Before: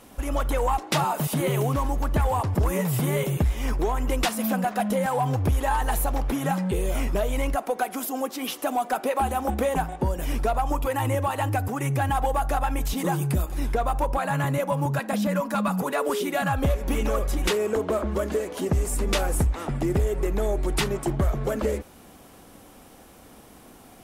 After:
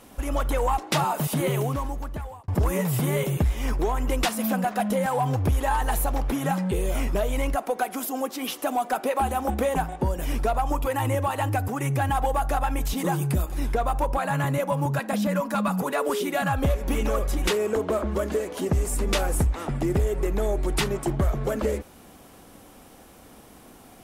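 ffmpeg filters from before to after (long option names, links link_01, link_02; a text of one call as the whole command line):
ffmpeg -i in.wav -filter_complex "[0:a]asplit=2[link_01][link_02];[link_01]atrim=end=2.48,asetpts=PTS-STARTPTS,afade=type=out:start_time=1.46:duration=1.02[link_03];[link_02]atrim=start=2.48,asetpts=PTS-STARTPTS,afade=type=in:duration=0.004:curve=hsin[link_04];[link_03][link_04]concat=n=2:v=0:a=1" out.wav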